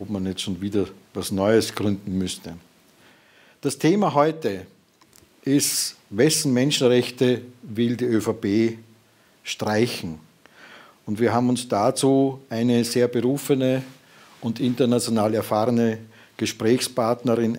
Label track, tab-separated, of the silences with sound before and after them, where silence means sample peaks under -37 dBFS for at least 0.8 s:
2.590000	3.630000	silence